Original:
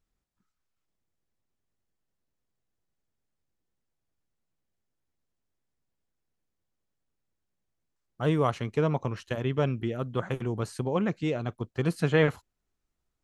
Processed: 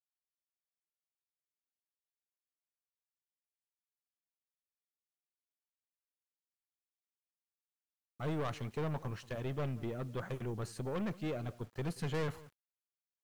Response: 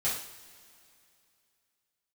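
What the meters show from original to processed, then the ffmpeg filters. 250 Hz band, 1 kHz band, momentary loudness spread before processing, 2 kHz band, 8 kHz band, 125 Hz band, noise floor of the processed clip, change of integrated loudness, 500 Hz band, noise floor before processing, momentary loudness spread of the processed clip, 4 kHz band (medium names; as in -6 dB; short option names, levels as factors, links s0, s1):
-10.5 dB, -10.5 dB, 8 LU, -12.0 dB, no reading, -9.5 dB, under -85 dBFS, -10.5 dB, -11.5 dB, -82 dBFS, 4 LU, -9.5 dB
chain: -filter_complex "[0:a]aeval=exprs='(tanh(22.4*val(0)+0.2)-tanh(0.2))/22.4':c=same,asplit=2[s0][s1];[s1]adelay=180.8,volume=0.1,highshelf=f=4000:g=-4.07[s2];[s0][s2]amix=inputs=2:normalize=0,asplit=2[s3][s4];[1:a]atrim=start_sample=2205,afade=t=out:st=0.18:d=0.01,atrim=end_sample=8379[s5];[s4][s5]afir=irnorm=-1:irlink=0,volume=0.0316[s6];[s3][s6]amix=inputs=2:normalize=0,acrusher=bits=9:mix=0:aa=0.000001,volume=0.531"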